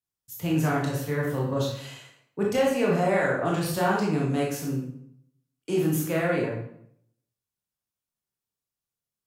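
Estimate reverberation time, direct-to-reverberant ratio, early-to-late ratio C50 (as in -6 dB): 0.70 s, -3.5 dB, 2.5 dB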